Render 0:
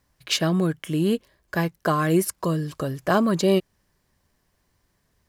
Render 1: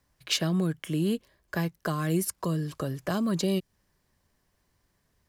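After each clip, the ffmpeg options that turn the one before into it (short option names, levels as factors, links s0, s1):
-filter_complex "[0:a]acrossover=split=240|3000[s0][s1][s2];[s1]acompressor=threshold=0.0447:ratio=6[s3];[s0][s3][s2]amix=inputs=3:normalize=0,volume=0.708"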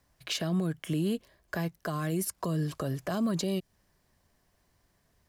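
-af "equalizer=f=680:w=5.2:g=5,alimiter=limit=0.0668:level=0:latency=1:release=71,volume=1.19"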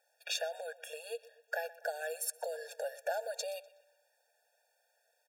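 -filter_complex "[0:a]asplit=2[s0][s1];[s1]adelay=124,lowpass=f=4600:p=1,volume=0.119,asplit=2[s2][s3];[s3]adelay=124,lowpass=f=4600:p=1,volume=0.49,asplit=2[s4][s5];[s5]adelay=124,lowpass=f=4600:p=1,volume=0.49,asplit=2[s6][s7];[s7]adelay=124,lowpass=f=4600:p=1,volume=0.49[s8];[s0][s2][s4][s6][s8]amix=inputs=5:normalize=0,afftfilt=real='re*eq(mod(floor(b*sr/1024/470),2),1)':imag='im*eq(mod(floor(b*sr/1024/470),2),1)':win_size=1024:overlap=0.75,volume=1.12"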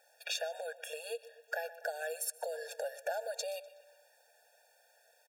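-af "acompressor=threshold=0.00112:ratio=1.5,aecho=1:1:148:0.0631,volume=2.66"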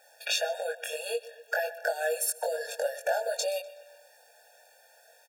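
-filter_complex "[0:a]asplit=2[s0][s1];[s1]adelay=21,volume=0.708[s2];[s0][s2]amix=inputs=2:normalize=0,volume=2.11"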